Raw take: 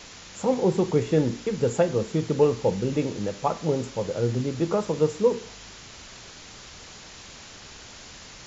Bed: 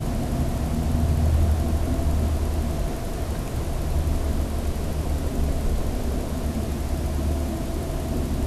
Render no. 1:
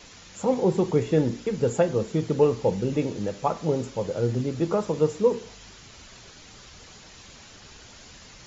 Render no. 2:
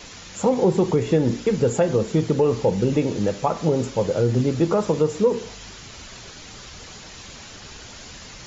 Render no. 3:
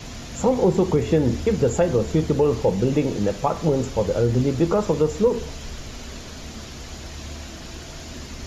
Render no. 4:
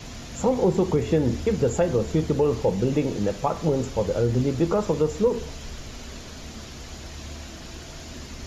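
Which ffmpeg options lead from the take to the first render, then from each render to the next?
ffmpeg -i in.wav -af "afftdn=noise_reduction=6:noise_floor=-45" out.wav
ffmpeg -i in.wav -af "alimiter=limit=-16dB:level=0:latency=1:release=135,acontrast=82" out.wav
ffmpeg -i in.wav -i bed.wav -filter_complex "[1:a]volume=-12dB[link_01];[0:a][link_01]amix=inputs=2:normalize=0" out.wav
ffmpeg -i in.wav -af "volume=-2.5dB" out.wav

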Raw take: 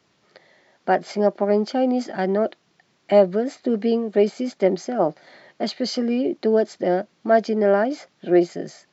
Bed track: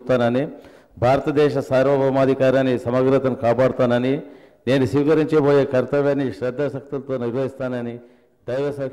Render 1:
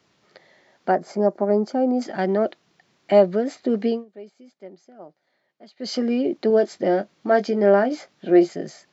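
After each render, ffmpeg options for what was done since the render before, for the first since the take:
ffmpeg -i in.wav -filter_complex "[0:a]asettb=1/sr,asplit=3[link_01][link_02][link_03];[link_01]atrim=end=0.914[link_04];[link_02]atrim=start=0.91:end=2.02,asetpts=PTS-STARTPTS,afade=type=in:duration=0.004:curve=qsin,afade=type=out:start_time=1.106:duration=0.004:curve=qsin,equalizer=frequency=3100:width=1:gain=-15[link_05];[link_03]atrim=start=2.016[link_06];[link_04][link_05]acrossfade=duration=0.004:curve1=hsin:curve2=qsin[link_07];[link_07][link_06]acrossfade=duration=0.004:curve1=qsin:curve2=hsin,asettb=1/sr,asplit=3[link_08][link_09][link_10];[link_08]atrim=end=6.484[link_11];[link_09]atrim=start=6.48:end=8.49,asetpts=PTS-STARTPTS,afade=type=in:duration=0.004:curve=qsin,afade=type=out:start_time=2.006:duration=0.004:curve=qsin,asplit=2[link_12][link_13];[link_13]adelay=20,volume=-10dB[link_14];[link_12][link_14]amix=inputs=2:normalize=0,atrim=end_sample=88641[link_15];[link_10]atrim=start=8.486[link_16];[link_11][link_15]acrossfade=duration=0.004:curve1=hsin:curve2=qsin[link_17];[link_17][link_16]acrossfade=duration=0.004:curve1=qsin:curve2=hsin,asplit=3[link_18][link_19][link_20];[link_18]atrim=end=4.05,asetpts=PTS-STARTPTS,afade=type=out:start_time=3.86:duration=0.19:silence=0.0749894[link_21];[link_19]atrim=start=4.05:end=5.76,asetpts=PTS-STARTPTS,volume=-22.5dB[link_22];[link_20]atrim=start=5.76,asetpts=PTS-STARTPTS,afade=type=in:duration=0.19:silence=0.0749894[link_23];[link_21][link_22][link_23]concat=n=3:v=0:a=1" out.wav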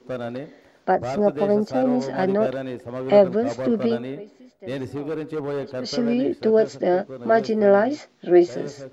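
ffmpeg -i in.wav -i bed.wav -filter_complex "[1:a]volume=-12dB[link_01];[0:a][link_01]amix=inputs=2:normalize=0" out.wav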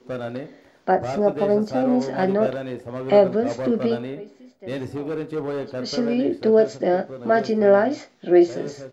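ffmpeg -i in.wav -filter_complex "[0:a]asplit=2[link_01][link_02];[link_02]adelay=32,volume=-11dB[link_03];[link_01][link_03]amix=inputs=2:normalize=0,asplit=2[link_04][link_05];[link_05]adelay=99.13,volume=-24dB,highshelf=frequency=4000:gain=-2.23[link_06];[link_04][link_06]amix=inputs=2:normalize=0" out.wav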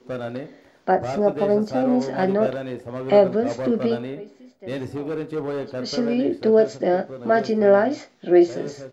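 ffmpeg -i in.wav -af anull out.wav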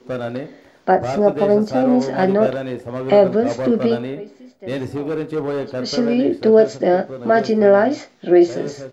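ffmpeg -i in.wav -af "volume=4.5dB,alimiter=limit=-3dB:level=0:latency=1" out.wav

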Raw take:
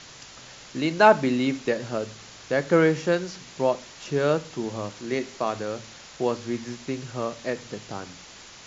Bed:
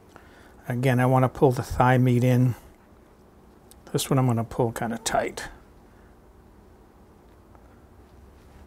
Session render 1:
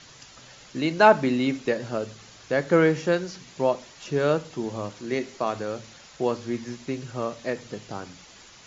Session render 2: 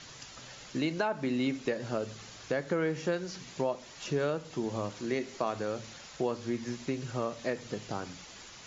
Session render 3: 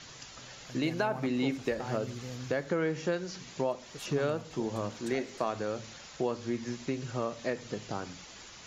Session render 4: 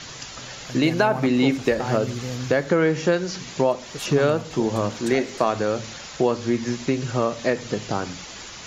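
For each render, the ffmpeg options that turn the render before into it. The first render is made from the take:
ffmpeg -i in.wav -af "afftdn=noise_reduction=6:noise_floor=-46" out.wav
ffmpeg -i in.wav -af "alimiter=limit=-14dB:level=0:latency=1:release=360,acompressor=threshold=-31dB:ratio=2" out.wav
ffmpeg -i in.wav -i bed.wav -filter_complex "[1:a]volume=-21.5dB[link_01];[0:a][link_01]amix=inputs=2:normalize=0" out.wav
ffmpeg -i in.wav -af "volume=11dB" out.wav

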